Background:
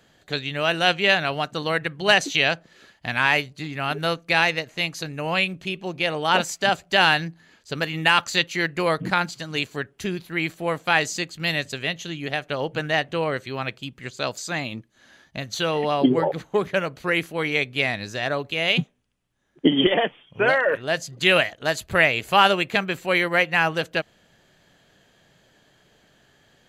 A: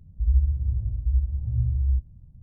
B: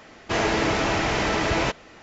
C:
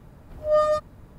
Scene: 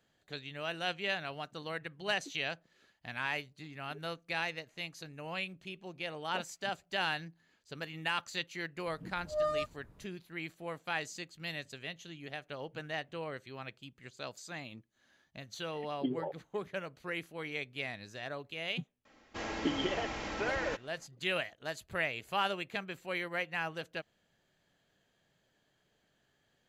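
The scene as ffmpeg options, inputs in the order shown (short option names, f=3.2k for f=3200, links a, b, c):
-filter_complex "[0:a]volume=-16dB[a];[3:a]aresample=32000,aresample=44100[b];[2:a]aecho=1:1:3.7:0.39[c];[b]atrim=end=1.18,asetpts=PTS-STARTPTS,volume=-12dB,afade=t=in:d=0.004:c=hsin,afade=t=out:st=1.176:d=0.004:c=hsin,adelay=8860[d];[c]atrim=end=2.02,asetpts=PTS-STARTPTS,volume=-16.5dB,afade=t=in:d=0.004:c=hsin,afade=t=out:st=2.016:d=0.004:c=hsin,adelay=19050[e];[a][d][e]amix=inputs=3:normalize=0"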